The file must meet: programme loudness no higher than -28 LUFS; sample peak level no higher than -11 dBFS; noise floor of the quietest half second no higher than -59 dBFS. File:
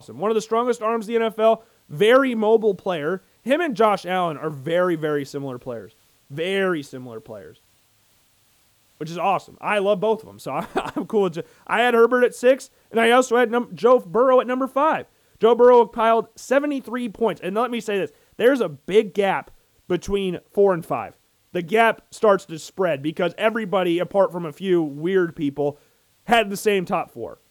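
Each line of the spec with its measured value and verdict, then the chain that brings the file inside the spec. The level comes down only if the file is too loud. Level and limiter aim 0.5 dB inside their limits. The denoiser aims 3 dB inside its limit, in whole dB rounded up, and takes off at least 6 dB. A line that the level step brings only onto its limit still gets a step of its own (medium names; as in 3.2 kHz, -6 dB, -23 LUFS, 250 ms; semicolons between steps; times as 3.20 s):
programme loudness -21.0 LUFS: fail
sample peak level -5.0 dBFS: fail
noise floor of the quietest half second -60 dBFS: pass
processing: trim -7.5 dB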